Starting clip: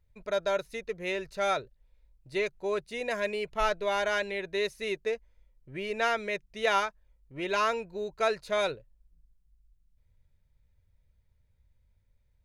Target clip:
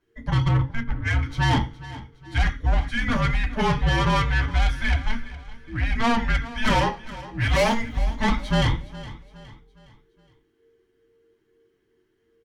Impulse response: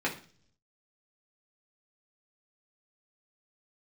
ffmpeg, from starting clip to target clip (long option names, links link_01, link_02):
-filter_complex "[0:a]asettb=1/sr,asplit=3[link_01][link_02][link_03];[link_01]atrim=end=7.404[link_04];[link_02]atrim=start=7.4:end=7.96,asetpts=PTS-STARTPTS,afade=type=in:duration=0.004:curve=qsin,afade=type=out:start_time=0.556:duration=0.004:curve=qsin,aemphasis=mode=production:type=50fm[link_05];[link_03]atrim=start=7.956[link_06];[link_04][link_05]acrossfade=duration=0.004:curve1=hsin:curve2=qsin[link_07];[link_07][link_06]acrossfade=duration=0.004:curve1=qsin:curve2=hsin[link_08];[1:a]atrim=start_sample=2205,asetrate=61740,aresample=44100[link_09];[link_08][link_09]afir=irnorm=-1:irlink=0,asoftclip=type=tanh:threshold=-21.5dB,aecho=1:1:414|828|1242|1656:0.141|0.0593|0.0249|0.0105,afreqshift=-460,asettb=1/sr,asplit=3[link_10][link_11][link_12];[link_10]atrim=end=0.494[link_13];[link_11]atrim=start=0.49:end=1.23,asetpts=PTS-STARTPTS,afade=type=in:duration=0.004:curve=qsin,afade=type=out:start_time=0.736:duration=0.004:curve=qsin,adynamicsmooth=sensitivity=2:basefreq=1500[link_14];[link_12]atrim=start=1.226[link_15];[link_13][link_14]acrossfade=duration=0.004:curve1=hsin:curve2=qsin[link_16];[link_16][link_15]acrossfade=duration=0.004:curve1=qsin:curve2=hsin,volume=6dB"